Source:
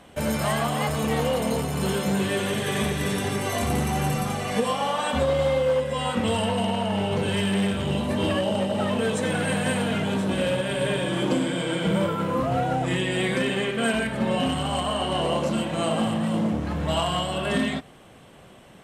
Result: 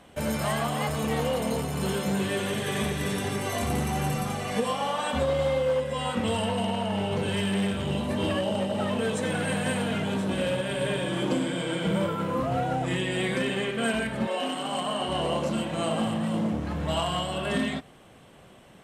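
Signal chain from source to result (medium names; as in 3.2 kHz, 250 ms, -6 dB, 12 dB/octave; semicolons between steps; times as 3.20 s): 14.26–15.07 s: high-pass 390 Hz -> 110 Hz 24 dB/octave; trim -3 dB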